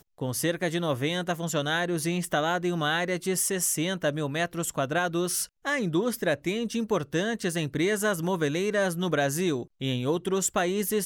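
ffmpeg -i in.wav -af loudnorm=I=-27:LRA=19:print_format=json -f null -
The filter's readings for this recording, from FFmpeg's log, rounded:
"input_i" : "-27.4",
"input_tp" : "-13.4",
"input_lra" : "0.8",
"input_thresh" : "-37.4",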